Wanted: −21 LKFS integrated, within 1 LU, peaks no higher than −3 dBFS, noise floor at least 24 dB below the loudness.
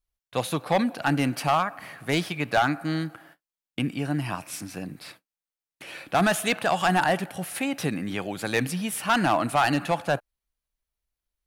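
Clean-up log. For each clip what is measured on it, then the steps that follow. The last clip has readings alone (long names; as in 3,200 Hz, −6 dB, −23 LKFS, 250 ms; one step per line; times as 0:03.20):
share of clipped samples 0.6%; peaks flattened at −14.5 dBFS; integrated loudness −26.0 LKFS; sample peak −14.5 dBFS; target loudness −21.0 LKFS
→ clipped peaks rebuilt −14.5 dBFS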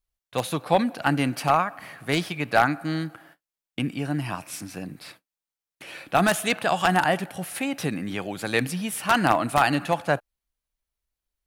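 share of clipped samples 0.0%; integrated loudness −25.0 LKFS; sample peak −5.5 dBFS; target loudness −21.0 LKFS
→ level +4 dB
brickwall limiter −3 dBFS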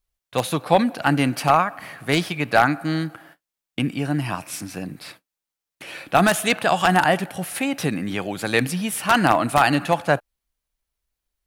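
integrated loudness −21.0 LKFS; sample peak −3.0 dBFS; background noise floor −87 dBFS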